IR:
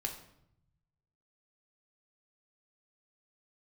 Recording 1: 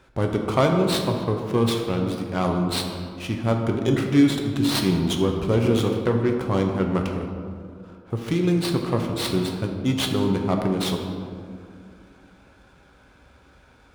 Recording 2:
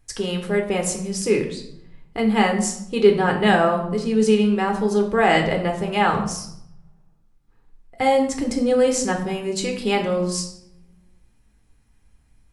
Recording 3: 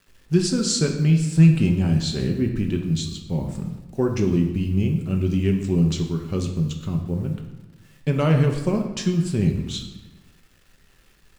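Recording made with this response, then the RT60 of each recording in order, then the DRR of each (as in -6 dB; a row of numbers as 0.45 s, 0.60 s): 2; 2.3 s, 0.75 s, 1.1 s; 2.0 dB, 2.5 dB, 2.0 dB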